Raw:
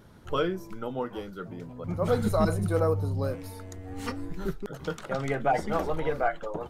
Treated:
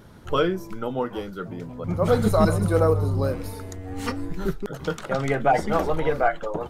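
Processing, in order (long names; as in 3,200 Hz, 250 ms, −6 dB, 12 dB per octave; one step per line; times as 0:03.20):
0:01.59–0:03.72: echo with shifted repeats 135 ms, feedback 53%, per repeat −50 Hz, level −15 dB
level +5.5 dB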